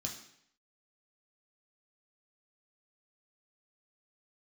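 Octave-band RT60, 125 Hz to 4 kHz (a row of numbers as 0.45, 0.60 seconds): 0.70, 0.70, 0.70, 0.70, 0.70, 0.70 seconds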